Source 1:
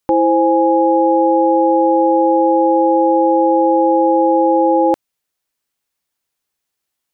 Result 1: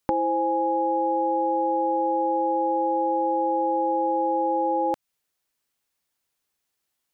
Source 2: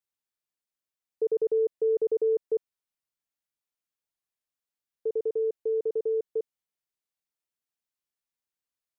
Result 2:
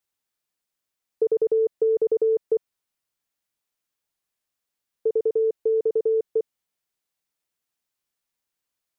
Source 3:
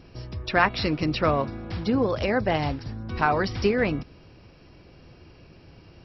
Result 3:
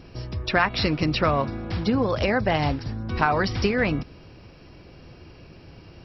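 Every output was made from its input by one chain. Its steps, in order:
dynamic bell 380 Hz, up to -7 dB, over -27 dBFS, Q 1; compression, threshold -19 dBFS; normalise loudness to -24 LUFS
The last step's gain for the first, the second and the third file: -1.5 dB, +7.0 dB, +4.0 dB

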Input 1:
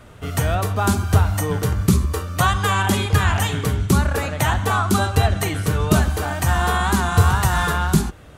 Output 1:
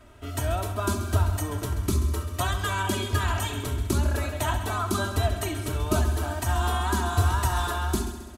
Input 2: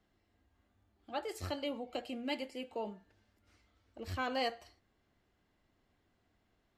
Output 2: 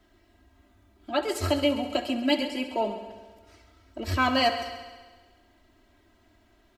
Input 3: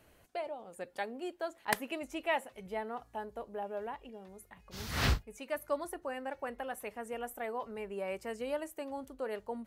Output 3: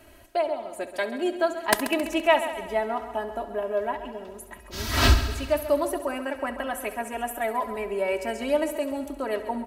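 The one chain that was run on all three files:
comb 3.1 ms, depth 86%; dynamic bell 2 kHz, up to -5 dB, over -41 dBFS, Q 3.8; on a send: multi-head delay 67 ms, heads first and second, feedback 60%, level -14.5 dB; on the sum: normalise loudness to -27 LUFS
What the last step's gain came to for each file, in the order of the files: -9.5 dB, +10.5 dB, +9.0 dB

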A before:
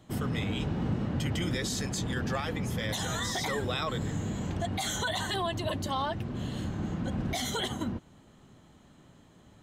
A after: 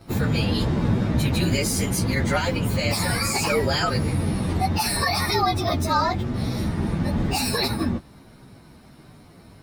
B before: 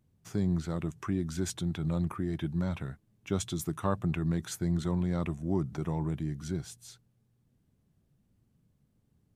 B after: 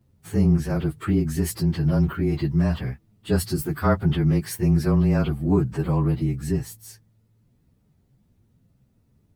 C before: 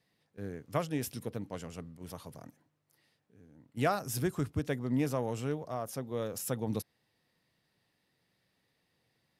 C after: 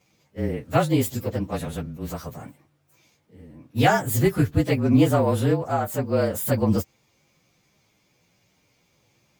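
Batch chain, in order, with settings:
frequency axis rescaled in octaves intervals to 110%; normalise loudness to -23 LUFS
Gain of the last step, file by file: +12.5 dB, +11.0 dB, +15.0 dB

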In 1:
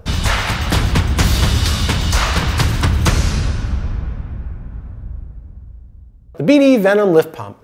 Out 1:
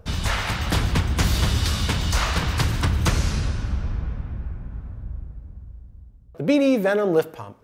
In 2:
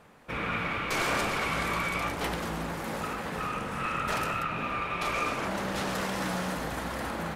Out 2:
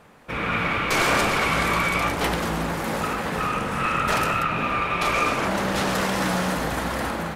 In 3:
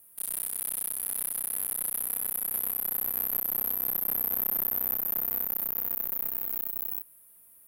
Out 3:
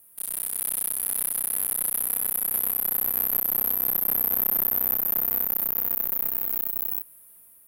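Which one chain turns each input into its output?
level rider gain up to 3.5 dB; normalise loudness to -23 LUFS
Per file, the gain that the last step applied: -7.5 dB, +4.5 dB, +1.5 dB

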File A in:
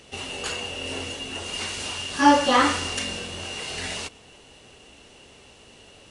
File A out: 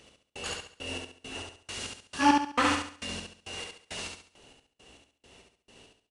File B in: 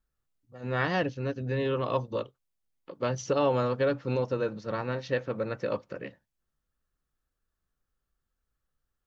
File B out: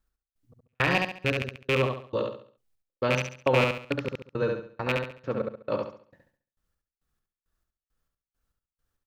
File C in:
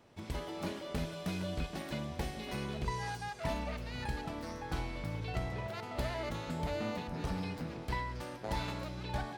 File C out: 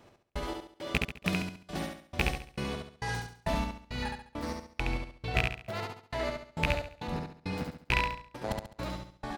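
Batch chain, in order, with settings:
rattle on loud lows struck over -31 dBFS, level -16 dBFS; trance gate "x...xx...x" 169 bpm -60 dB; on a send: feedback delay 69 ms, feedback 36%, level -3.5 dB; on the sum: peak normalisation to -9 dBFS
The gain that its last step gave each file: -6.5 dB, +2.5 dB, +5.0 dB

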